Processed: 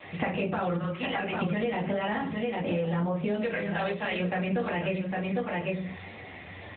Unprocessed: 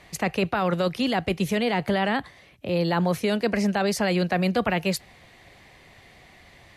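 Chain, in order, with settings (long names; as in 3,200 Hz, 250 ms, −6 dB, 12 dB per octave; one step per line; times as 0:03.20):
0:03.37–0:04.20: spectral tilt +4 dB per octave
flanger 1.8 Hz, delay 9.9 ms, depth 1.7 ms, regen −18%
0:00.78–0:01.42: resonant band-pass 1,500 Hz, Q 1.2
single-tap delay 801 ms −11 dB
convolution reverb RT60 0.35 s, pre-delay 4 ms, DRR −3.5 dB
in parallel at +3 dB: brickwall limiter −15.5 dBFS, peak gain reduction 7.5 dB
on the sum: downward compressor 8 to 1, threshold −26 dBFS, peak gain reduction 16 dB
pitch vibrato 1 Hz 24 cents
AMR narrowband 10.2 kbit/s 8,000 Hz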